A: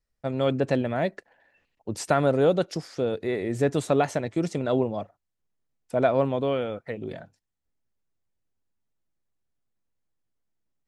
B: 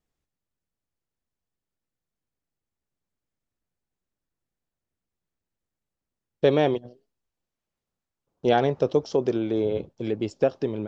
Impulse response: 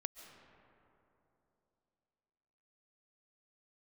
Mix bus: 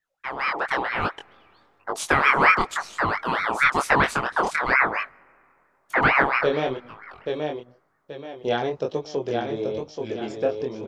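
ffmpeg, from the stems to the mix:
-filter_complex "[0:a]aeval=exprs='val(0)*sin(2*PI*1200*n/s+1200*0.55/4.4*sin(2*PI*4.4*n/s))':channel_layout=same,volume=3dB,asplit=2[link_01][link_02];[link_02]volume=-19dB[link_03];[1:a]volume=-4.5dB,asplit=3[link_04][link_05][link_06];[link_05]volume=-5dB[link_07];[link_06]apad=whole_len=479650[link_08];[link_01][link_08]sidechaincompress=threshold=-37dB:ratio=8:attack=7.3:release=1280[link_09];[2:a]atrim=start_sample=2205[link_10];[link_03][link_10]afir=irnorm=-1:irlink=0[link_11];[link_07]aecho=0:1:830|1660|2490|3320|4150:1|0.37|0.137|0.0507|0.0187[link_12];[link_09][link_04][link_11][link_12]amix=inputs=4:normalize=0,lowshelf=frequency=380:gain=-6.5,flanger=delay=19:depth=7.3:speed=1,dynaudnorm=framelen=210:gausssize=9:maxgain=7dB"

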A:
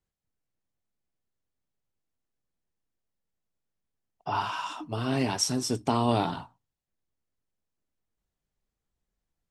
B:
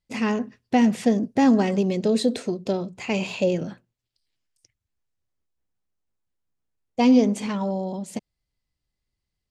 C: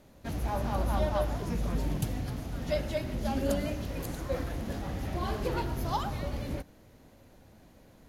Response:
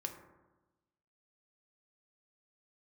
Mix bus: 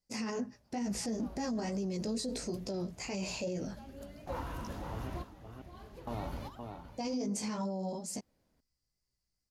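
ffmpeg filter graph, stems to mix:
-filter_complex "[0:a]lowpass=2000,volume=-13.5dB,asplit=3[link_01][link_02][link_03];[link_01]atrim=end=5.1,asetpts=PTS-STARTPTS,afade=type=out:start_time=5.096:duration=0.004:curve=hsin[link_04];[link_02]atrim=start=5.1:end=6.07,asetpts=PTS-STARTPTS,volume=0[link_05];[link_03]atrim=start=6.07,asetpts=PTS-STARTPTS,afade=type=in:duration=0.004:curve=hsin[link_06];[link_04][link_05][link_06]concat=n=3:v=0:a=1,asplit=3[link_07][link_08][link_09];[link_08]volume=-6.5dB[link_10];[1:a]highshelf=frequency=4200:width_type=q:width=3:gain=6,flanger=delay=15.5:depth=2.6:speed=2.2,volume=-3.5dB[link_11];[2:a]volume=-7dB,asplit=2[link_12][link_13];[link_13]volume=-12dB[link_14];[link_09]apad=whole_len=356577[link_15];[link_12][link_15]sidechaingate=range=-33dB:threshold=-57dB:ratio=16:detection=peak[link_16];[link_10][link_14]amix=inputs=2:normalize=0,aecho=0:1:518:1[link_17];[link_07][link_11][link_16][link_17]amix=inputs=4:normalize=0,alimiter=level_in=4.5dB:limit=-24dB:level=0:latency=1:release=42,volume=-4.5dB"

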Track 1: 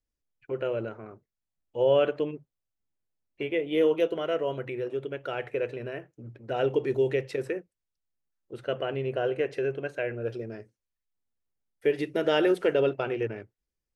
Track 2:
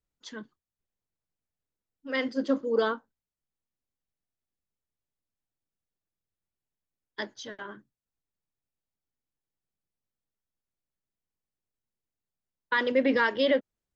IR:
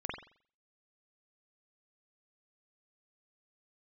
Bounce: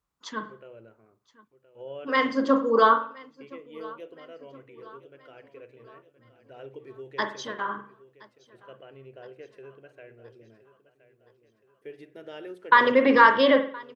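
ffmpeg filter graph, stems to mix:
-filter_complex "[0:a]volume=-18.5dB,asplit=3[link_01][link_02][link_03];[link_02]volume=-17dB[link_04];[link_03]volume=-13dB[link_05];[1:a]equalizer=frequency=1100:width=2.7:gain=15,volume=1dB,asplit=3[link_06][link_07][link_08];[link_07]volume=-6.5dB[link_09];[link_08]volume=-21dB[link_10];[2:a]atrim=start_sample=2205[link_11];[link_04][link_09]amix=inputs=2:normalize=0[link_12];[link_12][link_11]afir=irnorm=-1:irlink=0[link_13];[link_05][link_10]amix=inputs=2:normalize=0,aecho=0:1:1020|2040|3060|4080|5100|6120|7140:1|0.49|0.24|0.118|0.0576|0.0282|0.0138[link_14];[link_01][link_06][link_13][link_14]amix=inputs=4:normalize=0,highpass=41"

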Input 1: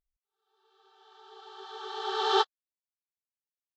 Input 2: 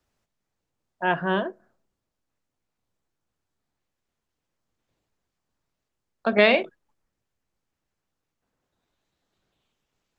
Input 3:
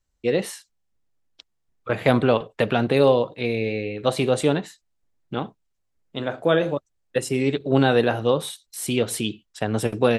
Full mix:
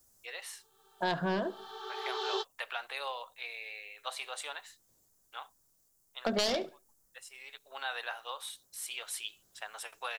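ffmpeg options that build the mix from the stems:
ffmpeg -i stem1.wav -i stem2.wav -i stem3.wav -filter_complex "[0:a]acrossover=split=460|3000[link_01][link_02][link_03];[link_02]acompressor=threshold=-35dB:ratio=6[link_04];[link_01][link_04][link_03]amix=inputs=3:normalize=0,volume=-3dB[link_05];[1:a]equalizer=frequency=3800:width_type=o:width=1.3:gain=-14,aeval=exprs='0.473*sin(PI/2*2.82*val(0)/0.473)':channel_layout=same,aexciter=amount=6.1:drive=7.5:freq=3600,volume=-11.5dB,asplit=3[link_06][link_07][link_08];[link_07]volume=-22.5dB[link_09];[2:a]highpass=frequency=880:width=0.5412,highpass=frequency=880:width=1.3066,volume=-9.5dB[link_10];[link_08]apad=whole_len=449102[link_11];[link_10][link_11]sidechaincompress=threshold=-36dB:ratio=4:attack=20:release=1050[link_12];[link_09]aecho=0:1:71|142|213:1|0.2|0.04[link_13];[link_05][link_06][link_12][link_13]amix=inputs=4:normalize=0,acompressor=threshold=-30dB:ratio=3" out.wav

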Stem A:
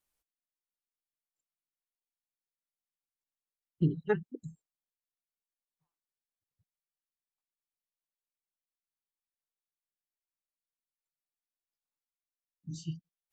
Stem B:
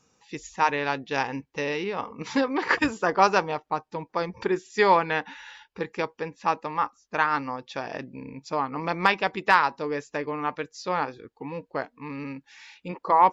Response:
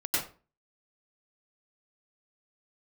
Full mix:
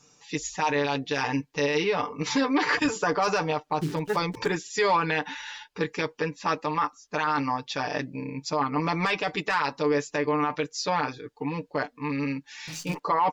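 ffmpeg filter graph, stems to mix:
-filter_complex "[0:a]bass=frequency=250:gain=-4,treble=frequency=4000:gain=7,acrusher=bits=8:dc=4:mix=0:aa=0.000001,volume=-6.5dB[link_01];[1:a]aecho=1:1:6.8:0.82,volume=-5dB[link_02];[link_01][link_02]amix=inputs=2:normalize=0,equalizer=frequency=5700:width=0.59:gain=5.5,acontrast=77,alimiter=limit=-15.5dB:level=0:latency=1:release=14"

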